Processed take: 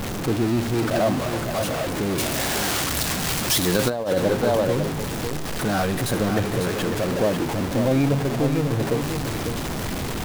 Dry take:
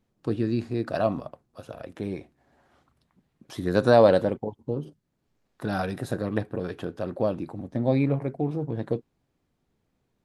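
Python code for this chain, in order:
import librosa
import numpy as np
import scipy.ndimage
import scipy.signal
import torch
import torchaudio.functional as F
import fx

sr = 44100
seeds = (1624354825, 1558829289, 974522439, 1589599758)

y = x + 0.5 * 10.0 ** (-22.5 / 20.0) * np.sign(x)
y = y + 10.0 ** (-7.0 / 20.0) * np.pad(y, (int(548 * sr / 1000.0), 0))[:len(y)]
y = fx.over_compress(y, sr, threshold_db=-18.0, ratio=-0.5)
y = fx.high_shelf(y, sr, hz=2700.0, db=10.5, at=(2.18, 3.9))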